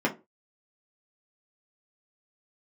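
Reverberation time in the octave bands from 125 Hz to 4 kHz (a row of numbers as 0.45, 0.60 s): 0.30, 0.30, 0.30, 0.25, 0.20, 0.15 s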